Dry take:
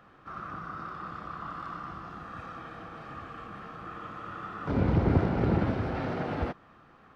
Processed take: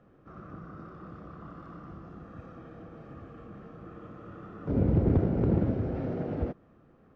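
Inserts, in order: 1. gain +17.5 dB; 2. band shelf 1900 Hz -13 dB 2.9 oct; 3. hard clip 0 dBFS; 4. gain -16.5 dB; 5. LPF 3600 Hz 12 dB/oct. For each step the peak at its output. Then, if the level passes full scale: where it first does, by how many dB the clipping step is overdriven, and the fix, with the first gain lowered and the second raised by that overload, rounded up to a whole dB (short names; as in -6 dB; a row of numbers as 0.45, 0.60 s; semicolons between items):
+7.5, +7.5, 0.0, -16.5, -16.5 dBFS; step 1, 7.5 dB; step 1 +9.5 dB, step 4 -8.5 dB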